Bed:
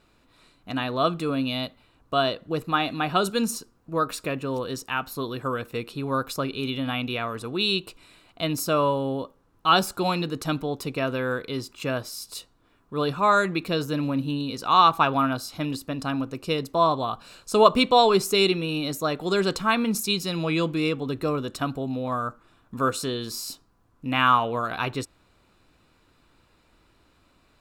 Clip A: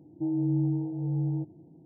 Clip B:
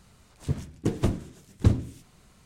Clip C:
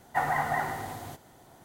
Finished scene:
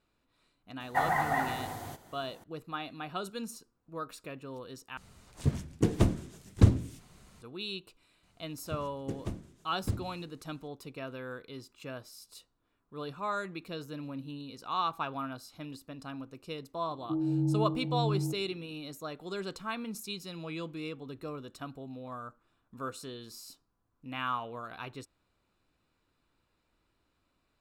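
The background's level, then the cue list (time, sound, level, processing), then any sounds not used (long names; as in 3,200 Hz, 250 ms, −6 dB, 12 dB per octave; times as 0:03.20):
bed −14.5 dB
0:00.80: mix in C −1 dB
0:04.97: overwrite with B
0:08.23: mix in B −12.5 dB
0:16.89: mix in A −2.5 dB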